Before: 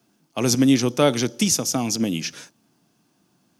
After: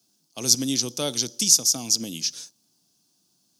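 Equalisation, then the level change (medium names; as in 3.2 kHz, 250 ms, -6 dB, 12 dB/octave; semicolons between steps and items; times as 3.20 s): resonant high shelf 3.1 kHz +13.5 dB, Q 1.5; -11.0 dB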